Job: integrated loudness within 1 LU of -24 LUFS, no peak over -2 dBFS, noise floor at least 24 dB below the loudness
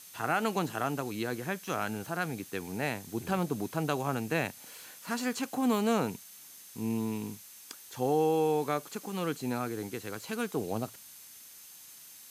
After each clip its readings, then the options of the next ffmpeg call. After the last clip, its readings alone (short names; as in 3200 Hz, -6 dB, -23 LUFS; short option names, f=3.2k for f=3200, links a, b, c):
steady tone 6300 Hz; tone level -60 dBFS; noise floor -51 dBFS; noise floor target -57 dBFS; loudness -32.5 LUFS; peak -15.0 dBFS; loudness target -24.0 LUFS
-> -af "bandreject=f=6.3k:w=30"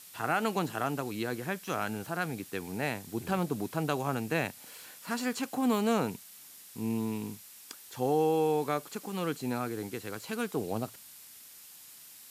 steady tone none; noise floor -52 dBFS; noise floor target -57 dBFS
-> -af "afftdn=nr=6:nf=-52"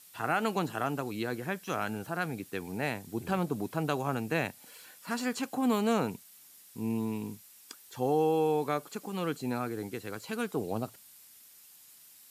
noise floor -56 dBFS; noise floor target -57 dBFS
-> -af "afftdn=nr=6:nf=-56"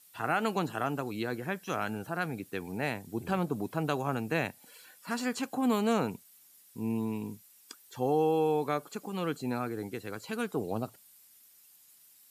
noise floor -60 dBFS; loudness -33.0 LUFS; peak -15.5 dBFS; loudness target -24.0 LUFS
-> -af "volume=9dB"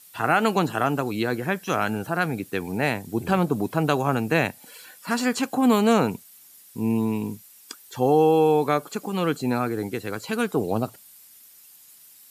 loudness -24.0 LUFS; peak -6.5 dBFS; noise floor -51 dBFS